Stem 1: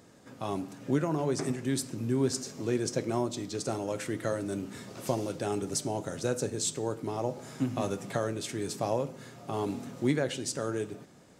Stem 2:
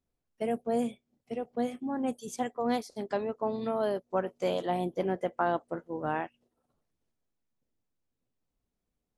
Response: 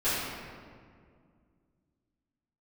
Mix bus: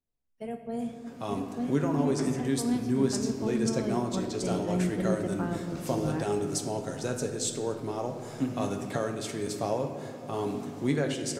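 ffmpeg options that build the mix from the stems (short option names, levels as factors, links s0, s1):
-filter_complex "[0:a]adelay=800,volume=0.841,asplit=2[s0][s1];[s1]volume=0.158[s2];[1:a]asubboost=boost=11:cutoff=210,volume=0.398,asplit=2[s3][s4];[s4]volume=0.15[s5];[2:a]atrim=start_sample=2205[s6];[s2][s5]amix=inputs=2:normalize=0[s7];[s7][s6]afir=irnorm=-1:irlink=0[s8];[s0][s3][s8]amix=inputs=3:normalize=0"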